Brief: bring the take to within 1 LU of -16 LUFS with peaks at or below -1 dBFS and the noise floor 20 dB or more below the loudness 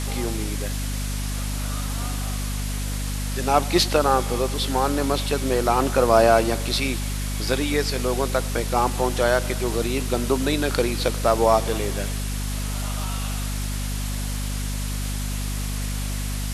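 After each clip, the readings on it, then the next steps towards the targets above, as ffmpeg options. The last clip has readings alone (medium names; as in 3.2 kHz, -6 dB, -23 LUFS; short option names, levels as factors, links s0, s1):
hum 50 Hz; highest harmonic 250 Hz; hum level -25 dBFS; noise floor -27 dBFS; noise floor target -44 dBFS; loudness -23.5 LUFS; peak level -3.5 dBFS; loudness target -16.0 LUFS
-> -af "bandreject=f=50:t=h:w=6,bandreject=f=100:t=h:w=6,bandreject=f=150:t=h:w=6,bandreject=f=200:t=h:w=6,bandreject=f=250:t=h:w=6"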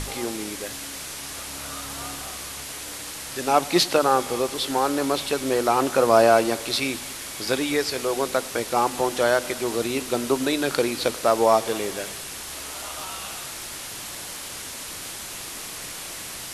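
hum not found; noise floor -36 dBFS; noise floor target -45 dBFS
-> -af "afftdn=nr=9:nf=-36"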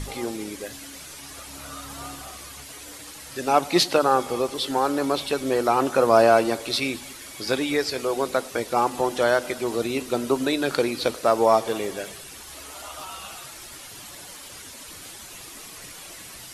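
noise floor -42 dBFS; noise floor target -43 dBFS
-> -af "afftdn=nr=6:nf=-42"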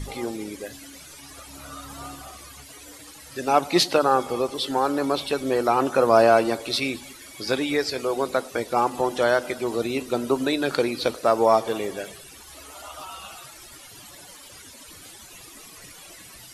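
noise floor -45 dBFS; loudness -23.0 LUFS; peak level -4.5 dBFS; loudness target -16.0 LUFS
-> -af "volume=2.24,alimiter=limit=0.891:level=0:latency=1"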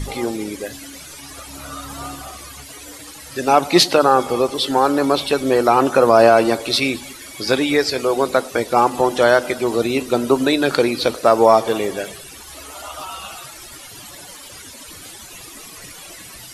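loudness -16.5 LUFS; peak level -1.0 dBFS; noise floor -38 dBFS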